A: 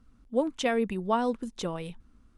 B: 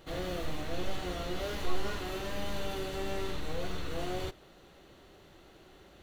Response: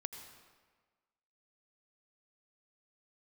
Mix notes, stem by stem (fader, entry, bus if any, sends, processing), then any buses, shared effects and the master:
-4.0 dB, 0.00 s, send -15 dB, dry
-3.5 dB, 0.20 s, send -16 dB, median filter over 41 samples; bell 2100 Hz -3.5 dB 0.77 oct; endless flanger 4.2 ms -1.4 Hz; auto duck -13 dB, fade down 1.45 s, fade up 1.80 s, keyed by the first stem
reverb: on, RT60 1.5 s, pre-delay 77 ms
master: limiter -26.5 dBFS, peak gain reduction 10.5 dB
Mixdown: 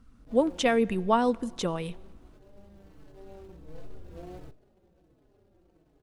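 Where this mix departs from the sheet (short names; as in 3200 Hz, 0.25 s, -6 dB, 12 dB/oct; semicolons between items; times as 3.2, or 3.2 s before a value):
stem A -4.0 dB -> +2.0 dB; master: missing limiter -26.5 dBFS, peak gain reduction 10.5 dB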